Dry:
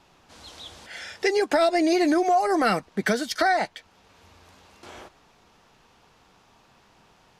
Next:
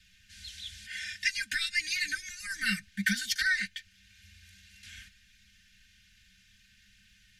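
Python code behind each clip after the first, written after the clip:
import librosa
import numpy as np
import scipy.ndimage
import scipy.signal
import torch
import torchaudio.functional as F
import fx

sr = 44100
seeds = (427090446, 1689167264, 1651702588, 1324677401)

y = scipy.signal.sosfilt(scipy.signal.cheby1(5, 1.0, [200.0, 1600.0], 'bandstop', fs=sr, output='sos'), x)
y = y + 0.97 * np.pad(y, (int(3.3 * sr / 1000.0), 0))[:len(y)]
y = y * librosa.db_to_amplitude(-1.5)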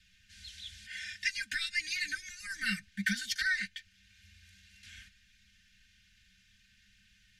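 y = fx.high_shelf(x, sr, hz=11000.0, db=-7.5)
y = y * librosa.db_to_amplitude(-3.0)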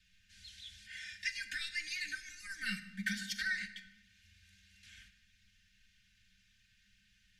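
y = fx.room_shoebox(x, sr, seeds[0], volume_m3=580.0, walls='mixed', distance_m=0.54)
y = y * librosa.db_to_amplitude(-5.5)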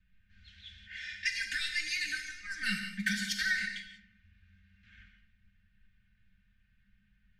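y = fx.env_lowpass(x, sr, base_hz=1000.0, full_db=-38.0)
y = fx.rev_gated(y, sr, seeds[1], gate_ms=210, shape='flat', drr_db=5.5)
y = y * librosa.db_to_amplitude(5.0)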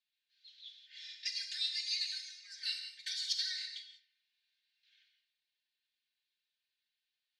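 y = fx.ladder_bandpass(x, sr, hz=4600.0, resonance_pct=60)
y = y * librosa.db_to_amplitude(7.5)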